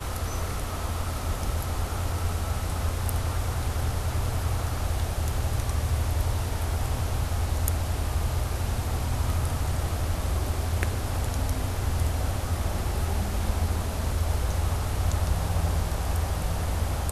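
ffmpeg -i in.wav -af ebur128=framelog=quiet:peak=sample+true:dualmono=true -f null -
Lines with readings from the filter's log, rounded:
Integrated loudness:
  I:         -25.8 LUFS
  Threshold: -35.8 LUFS
Loudness range:
  LRA:         1.3 LU
  Threshold: -45.7 LUFS
  LRA low:   -26.4 LUFS
  LRA high:  -25.0 LUFS
Sample peak:
  Peak:       -7.3 dBFS
True peak:
  Peak:       -7.3 dBFS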